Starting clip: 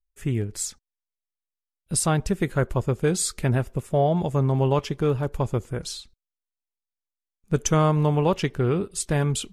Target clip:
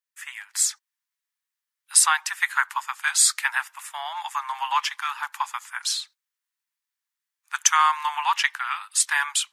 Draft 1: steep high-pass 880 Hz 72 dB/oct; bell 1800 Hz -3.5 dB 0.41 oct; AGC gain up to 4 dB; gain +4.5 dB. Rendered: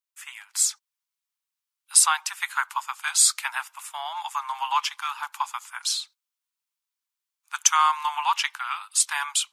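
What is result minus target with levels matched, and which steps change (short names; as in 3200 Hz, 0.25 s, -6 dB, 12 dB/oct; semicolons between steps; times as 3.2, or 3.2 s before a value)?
2000 Hz band -4.5 dB
change: bell 1800 Hz +6 dB 0.41 oct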